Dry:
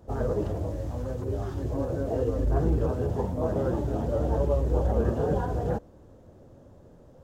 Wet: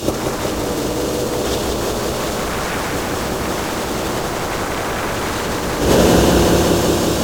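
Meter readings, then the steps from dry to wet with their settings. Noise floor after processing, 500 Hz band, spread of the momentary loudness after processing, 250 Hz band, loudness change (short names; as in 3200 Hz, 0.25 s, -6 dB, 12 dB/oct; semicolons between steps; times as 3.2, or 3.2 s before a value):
-22 dBFS, +10.5 dB, 8 LU, +13.0 dB, +10.5 dB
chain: spectral limiter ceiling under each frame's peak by 26 dB; HPF 52 Hz 12 dB/oct; band shelf 1200 Hz -11 dB; notches 50/100/150/200/250/300 Hz; two-slope reverb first 0.33 s, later 3.1 s, from -17 dB, DRR -2 dB; sine folder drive 19 dB, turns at -7.5 dBFS; negative-ratio compressor -17 dBFS, ratio -0.5; lo-fi delay 0.184 s, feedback 80%, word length 7-bit, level -4 dB; gain -1.5 dB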